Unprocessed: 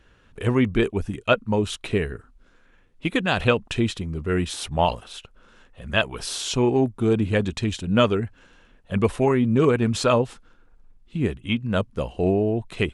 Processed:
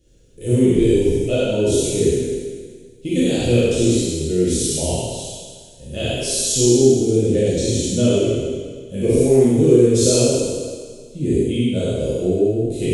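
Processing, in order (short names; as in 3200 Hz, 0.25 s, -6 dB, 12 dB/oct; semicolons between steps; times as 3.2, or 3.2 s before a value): spectral trails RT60 1.74 s; EQ curve 160 Hz 0 dB, 510 Hz +3 dB, 1100 Hz -28 dB, 6500 Hz +8 dB; non-linear reverb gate 0.14 s flat, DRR -7 dB; gain -6 dB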